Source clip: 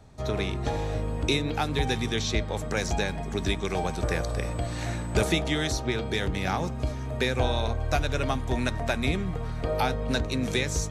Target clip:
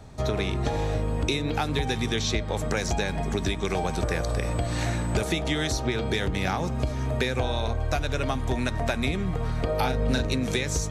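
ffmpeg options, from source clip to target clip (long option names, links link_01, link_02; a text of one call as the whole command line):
ffmpeg -i in.wav -filter_complex "[0:a]acompressor=threshold=-29dB:ratio=6,asettb=1/sr,asplit=3[link_01][link_02][link_03];[link_01]atrim=end=9.764[link_04];[link_02]atrim=start=9.76:end=10.35,asetpts=PTS-STARTPTS,afade=type=in:duration=0.004:curve=qsin,afade=type=out:start_time=0.586:duration=0.004:curve=qsin,asplit=2[link_05][link_06];[link_06]adelay=39,volume=-6dB[link_07];[link_05][link_07]amix=inputs=2:normalize=0,atrim=end_sample=26019[link_08];[link_03]atrim=start=10.346[link_09];[link_04][link_08]acrossfade=duration=0.004:curve1=hsin:curve2=qsin[link_10];[link_10][link_09]acrossfade=duration=0.004:curve1=qsin:curve2=hsin,volume=6.5dB" out.wav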